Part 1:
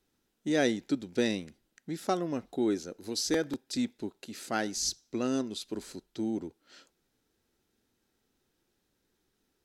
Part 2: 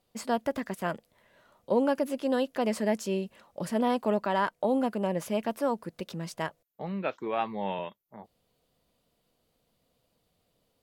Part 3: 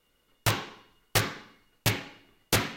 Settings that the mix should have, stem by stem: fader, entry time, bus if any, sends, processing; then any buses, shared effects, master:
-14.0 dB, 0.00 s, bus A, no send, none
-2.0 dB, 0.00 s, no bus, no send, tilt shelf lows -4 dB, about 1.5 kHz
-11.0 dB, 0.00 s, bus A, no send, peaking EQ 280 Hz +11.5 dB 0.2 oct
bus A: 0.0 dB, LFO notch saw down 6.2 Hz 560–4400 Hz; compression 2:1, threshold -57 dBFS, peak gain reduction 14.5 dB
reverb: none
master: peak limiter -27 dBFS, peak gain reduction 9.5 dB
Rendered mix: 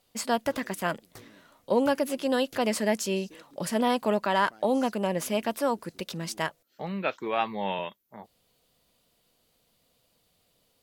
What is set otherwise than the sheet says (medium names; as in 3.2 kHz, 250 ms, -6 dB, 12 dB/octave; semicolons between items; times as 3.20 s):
stem 2 -2.0 dB -> +4.5 dB; master: missing peak limiter -27 dBFS, peak gain reduction 9.5 dB